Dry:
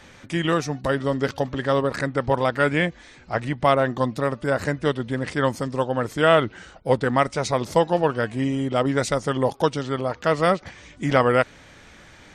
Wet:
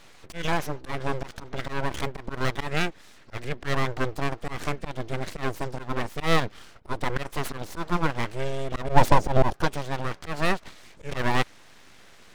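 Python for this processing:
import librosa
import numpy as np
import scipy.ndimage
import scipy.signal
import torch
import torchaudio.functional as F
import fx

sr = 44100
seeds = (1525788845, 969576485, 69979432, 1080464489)

y = fx.low_shelf_res(x, sr, hz=600.0, db=11.0, q=3.0, at=(8.89, 9.53))
y = fx.auto_swell(y, sr, attack_ms=127.0)
y = np.abs(y)
y = F.gain(torch.from_numpy(y), -2.0).numpy()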